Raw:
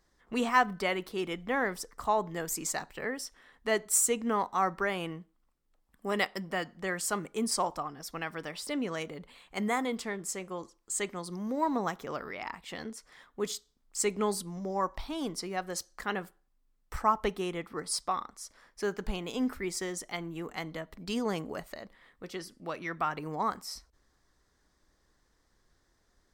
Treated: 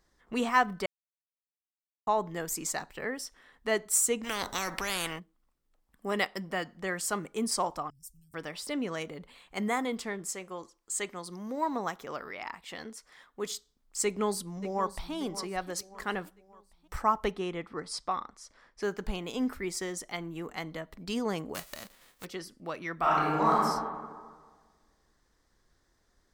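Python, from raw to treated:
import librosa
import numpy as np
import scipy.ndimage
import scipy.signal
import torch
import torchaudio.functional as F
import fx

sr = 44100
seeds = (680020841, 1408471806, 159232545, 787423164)

y = fx.spectral_comp(x, sr, ratio=4.0, at=(4.23, 5.18), fade=0.02)
y = fx.ellip_bandstop(y, sr, low_hz=110.0, high_hz=7900.0, order=3, stop_db=60, at=(7.9, 8.34))
y = fx.low_shelf(y, sr, hz=340.0, db=-6.0, at=(10.31, 13.52))
y = fx.echo_throw(y, sr, start_s=14.04, length_s=1.09, ms=580, feedback_pct=45, wet_db=-13.5)
y = fx.air_absorb(y, sr, metres=66.0, at=(17.31, 18.82))
y = fx.envelope_flatten(y, sr, power=0.3, at=(21.54, 22.24), fade=0.02)
y = fx.reverb_throw(y, sr, start_s=22.96, length_s=0.62, rt60_s=1.6, drr_db=-7.0)
y = fx.edit(y, sr, fx.silence(start_s=0.86, length_s=1.21), tone=tone)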